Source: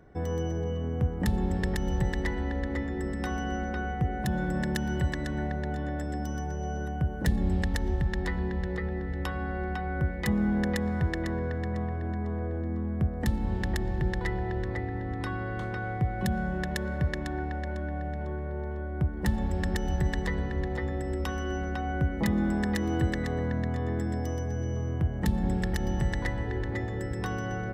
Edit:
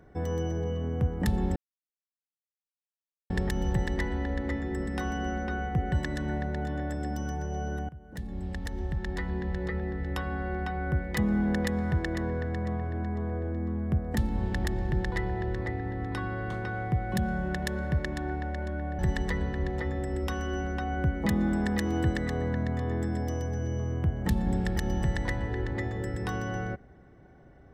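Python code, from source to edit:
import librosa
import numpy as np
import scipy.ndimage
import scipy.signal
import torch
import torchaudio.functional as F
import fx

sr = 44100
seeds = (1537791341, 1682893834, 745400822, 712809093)

y = fx.edit(x, sr, fx.insert_silence(at_s=1.56, length_s=1.74),
    fx.cut(start_s=4.18, length_s=0.83),
    fx.fade_in_from(start_s=6.98, length_s=1.79, floor_db=-20.5),
    fx.cut(start_s=18.08, length_s=1.88), tone=tone)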